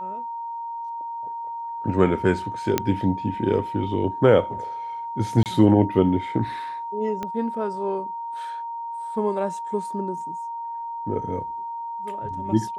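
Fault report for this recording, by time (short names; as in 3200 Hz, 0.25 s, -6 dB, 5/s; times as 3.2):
tone 930 Hz -29 dBFS
2.78 pop -5 dBFS
5.43–5.46 gap 28 ms
7.23 pop -16 dBFS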